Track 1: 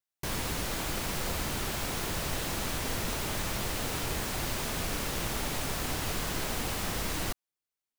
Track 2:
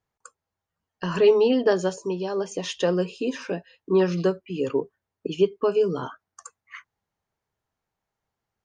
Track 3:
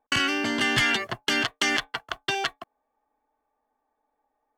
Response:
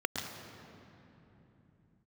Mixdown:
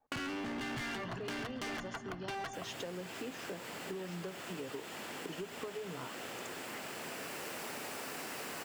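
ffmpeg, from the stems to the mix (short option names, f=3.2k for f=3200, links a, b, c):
-filter_complex "[0:a]highpass=300,adelay=2300,volume=-10dB,asplit=2[a][b];[b]volume=-4dB[c];[1:a]acompressor=threshold=-22dB:ratio=6,volume=-9dB,asplit=2[d][e];[2:a]tiltshelf=f=1.3k:g=7,volume=-2.5dB,asplit=2[f][g];[g]volume=-18dB[h];[e]apad=whole_len=453757[i];[a][i]sidechaincompress=threshold=-55dB:ratio=8:attack=16:release=928[j];[3:a]atrim=start_sample=2205[k];[c][h]amix=inputs=2:normalize=0[l];[l][k]afir=irnorm=-1:irlink=0[m];[j][d][f][m]amix=inputs=4:normalize=0,asoftclip=type=hard:threshold=-27.5dB,adynamicequalizer=threshold=0.00631:dfrequency=370:dqfactor=1.4:tfrequency=370:tqfactor=1.4:attack=5:release=100:ratio=0.375:range=2:mode=cutabove:tftype=bell,acompressor=threshold=-39dB:ratio=6"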